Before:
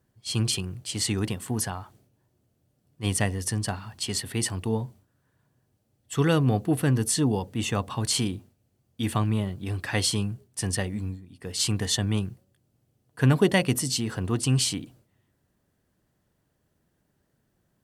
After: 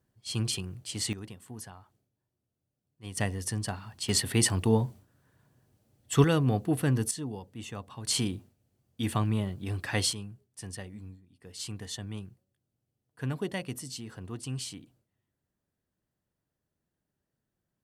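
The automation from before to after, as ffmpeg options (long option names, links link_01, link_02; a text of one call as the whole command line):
ffmpeg -i in.wav -af "asetnsamples=nb_out_samples=441:pad=0,asendcmd='1.13 volume volume -15dB;3.17 volume volume -4.5dB;4.09 volume volume 3dB;6.24 volume volume -3.5dB;7.11 volume volume -13dB;8.07 volume volume -3dB;10.13 volume volume -13dB',volume=-5dB" out.wav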